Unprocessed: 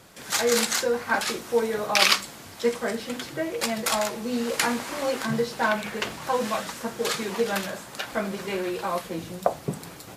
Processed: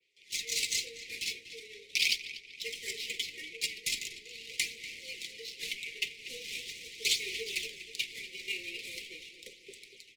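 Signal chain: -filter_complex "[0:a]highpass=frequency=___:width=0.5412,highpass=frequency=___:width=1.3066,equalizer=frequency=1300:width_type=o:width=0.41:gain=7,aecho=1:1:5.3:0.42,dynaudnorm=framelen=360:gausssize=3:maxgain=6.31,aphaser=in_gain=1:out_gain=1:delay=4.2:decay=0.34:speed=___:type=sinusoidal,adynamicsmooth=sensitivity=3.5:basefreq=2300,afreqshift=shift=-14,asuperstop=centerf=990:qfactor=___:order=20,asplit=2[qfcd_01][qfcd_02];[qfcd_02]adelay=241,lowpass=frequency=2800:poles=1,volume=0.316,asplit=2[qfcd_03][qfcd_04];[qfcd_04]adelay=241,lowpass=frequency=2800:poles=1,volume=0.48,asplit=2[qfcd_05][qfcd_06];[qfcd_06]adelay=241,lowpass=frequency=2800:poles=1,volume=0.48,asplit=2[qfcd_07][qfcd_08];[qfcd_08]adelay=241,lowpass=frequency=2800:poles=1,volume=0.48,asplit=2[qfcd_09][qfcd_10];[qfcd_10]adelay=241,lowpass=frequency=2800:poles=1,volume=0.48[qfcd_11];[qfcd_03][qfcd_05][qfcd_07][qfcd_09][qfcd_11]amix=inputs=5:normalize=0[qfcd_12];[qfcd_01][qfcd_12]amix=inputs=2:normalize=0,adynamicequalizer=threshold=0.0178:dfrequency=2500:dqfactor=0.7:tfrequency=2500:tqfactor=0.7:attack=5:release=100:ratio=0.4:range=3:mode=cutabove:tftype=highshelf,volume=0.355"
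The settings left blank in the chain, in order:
770, 770, 0.41, 0.6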